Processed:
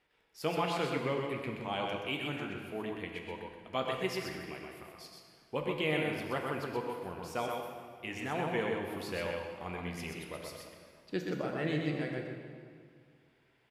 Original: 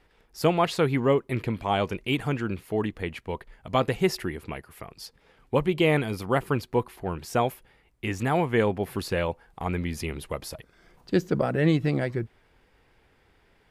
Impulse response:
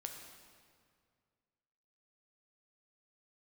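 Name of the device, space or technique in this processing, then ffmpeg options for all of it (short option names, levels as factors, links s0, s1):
PA in a hall: -filter_complex "[0:a]highpass=f=190:p=1,equalizer=f=2700:t=o:w=0.99:g=5,aecho=1:1:126:0.596[s0];[1:a]atrim=start_sample=2205[s1];[s0][s1]afir=irnorm=-1:irlink=0,volume=0.422"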